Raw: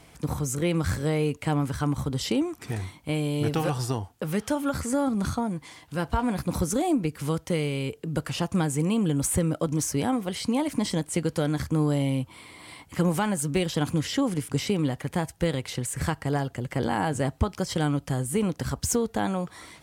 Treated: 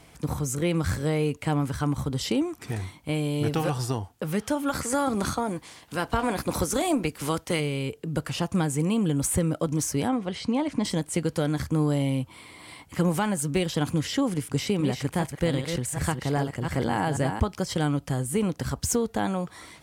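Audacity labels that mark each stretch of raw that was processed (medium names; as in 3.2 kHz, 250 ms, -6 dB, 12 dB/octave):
4.680000	7.590000	spectral peaks clipped ceiling under each frame's peak by 12 dB
10.080000	10.850000	distance through air 88 m
14.410000	17.400000	chunks repeated in reverse 394 ms, level -6 dB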